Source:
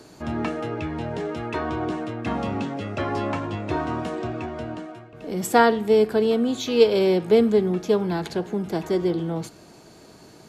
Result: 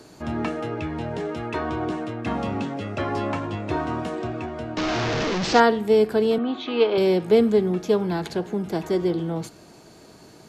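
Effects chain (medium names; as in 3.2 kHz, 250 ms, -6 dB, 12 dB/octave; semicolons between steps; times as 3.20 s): 4.77–5.60 s: one-bit delta coder 32 kbps, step -18 dBFS; 6.38–6.98 s: cabinet simulation 280–3500 Hz, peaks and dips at 320 Hz +8 dB, 490 Hz -6 dB, 770 Hz +5 dB, 1.2 kHz +7 dB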